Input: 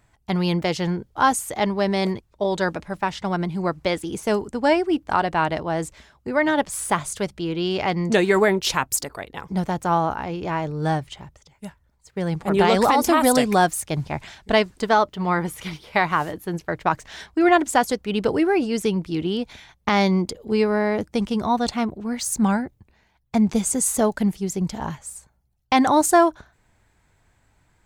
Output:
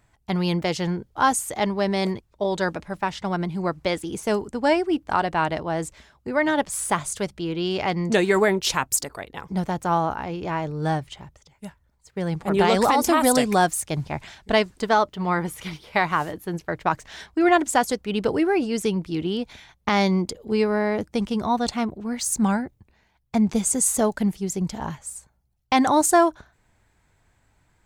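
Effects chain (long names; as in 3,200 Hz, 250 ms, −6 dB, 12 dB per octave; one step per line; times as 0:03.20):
dynamic equaliser 7,800 Hz, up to +3 dB, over −38 dBFS, Q 1.1
level −1.5 dB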